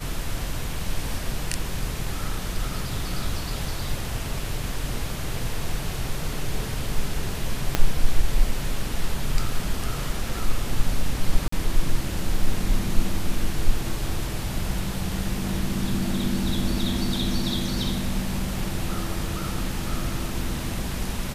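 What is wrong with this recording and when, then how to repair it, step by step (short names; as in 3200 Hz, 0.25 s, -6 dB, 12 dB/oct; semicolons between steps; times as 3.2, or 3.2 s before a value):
7.75 pop -5 dBFS
11.48–11.52 gap 44 ms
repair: de-click; interpolate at 11.48, 44 ms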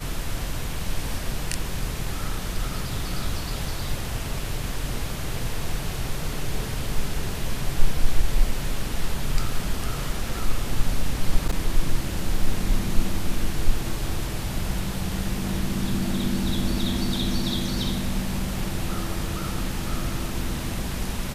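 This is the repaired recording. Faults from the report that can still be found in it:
7.75 pop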